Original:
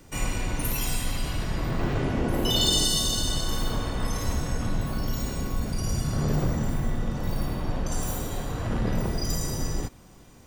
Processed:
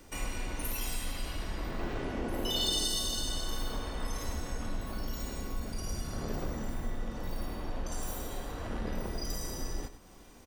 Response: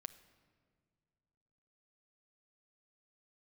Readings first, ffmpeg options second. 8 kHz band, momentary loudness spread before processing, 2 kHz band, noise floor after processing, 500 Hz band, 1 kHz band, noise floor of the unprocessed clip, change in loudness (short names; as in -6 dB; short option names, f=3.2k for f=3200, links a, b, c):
-7.5 dB, 8 LU, -6.5 dB, -53 dBFS, -7.5 dB, -7.0 dB, -50 dBFS, -8.5 dB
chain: -filter_complex "[0:a]bandreject=f=7.1k:w=19,aecho=1:1:98:0.211,asplit=2[a][b];[b]acompressor=threshold=-39dB:ratio=6,volume=3dB[c];[a][c]amix=inputs=2:normalize=0,equalizer=f=130:t=o:w=0.84:g=-12,volume=-9dB"